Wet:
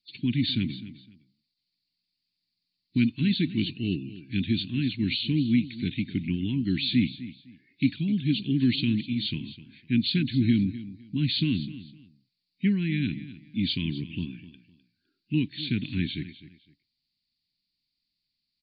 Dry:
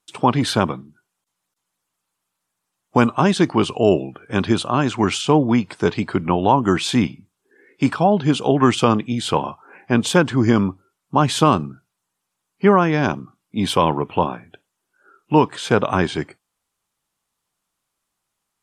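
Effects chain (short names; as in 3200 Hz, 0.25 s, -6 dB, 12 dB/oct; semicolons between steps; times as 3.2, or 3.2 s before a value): nonlinear frequency compression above 3500 Hz 4:1; elliptic band-stop 280–2200 Hz, stop band 40 dB; feedback echo 0.255 s, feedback 24%, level -15.5 dB; gain -5 dB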